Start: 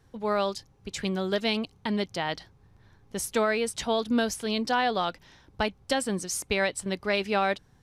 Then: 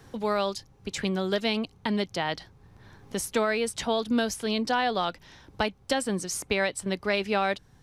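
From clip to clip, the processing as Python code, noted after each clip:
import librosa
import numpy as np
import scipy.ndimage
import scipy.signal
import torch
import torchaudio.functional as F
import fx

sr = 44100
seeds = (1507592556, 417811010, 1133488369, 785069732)

y = fx.band_squash(x, sr, depth_pct=40)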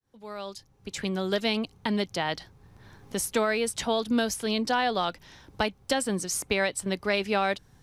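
y = fx.fade_in_head(x, sr, length_s=1.37)
y = fx.high_shelf(y, sr, hz=8600.0, db=5.5)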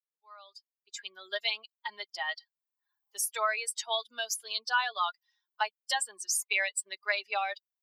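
y = fx.bin_expand(x, sr, power=2.0)
y = scipy.signal.sosfilt(scipy.signal.butter(4, 820.0, 'highpass', fs=sr, output='sos'), y)
y = y + 0.64 * np.pad(y, (int(4.8 * sr / 1000.0), 0))[:len(y)]
y = y * librosa.db_to_amplitude(2.0)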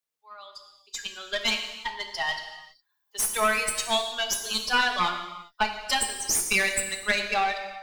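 y = fx.diode_clip(x, sr, knee_db=-31.0)
y = fx.rev_gated(y, sr, seeds[0], gate_ms=430, shape='falling', drr_db=4.0)
y = y * librosa.db_to_amplitude(7.0)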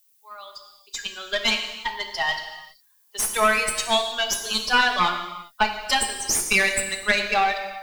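y = fx.high_shelf(x, sr, hz=6800.0, db=-4.5)
y = fx.dmg_noise_colour(y, sr, seeds[1], colour='violet', level_db=-66.0)
y = y * librosa.db_to_amplitude(4.5)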